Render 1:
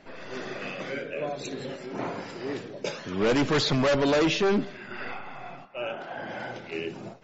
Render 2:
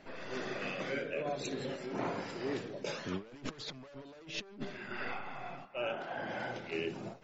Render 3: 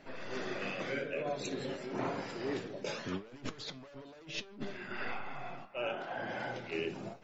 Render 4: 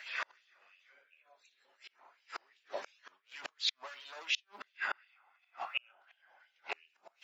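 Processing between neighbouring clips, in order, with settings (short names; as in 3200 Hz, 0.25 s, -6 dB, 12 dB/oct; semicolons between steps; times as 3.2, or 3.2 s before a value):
negative-ratio compressor -31 dBFS, ratio -0.5; gain -7 dB
flange 0.93 Hz, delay 6.8 ms, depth 4.5 ms, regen +77%; gain +4.5 dB
flipped gate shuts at -32 dBFS, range -36 dB; LFO high-pass sine 2.8 Hz 850–3000 Hz; gain +9 dB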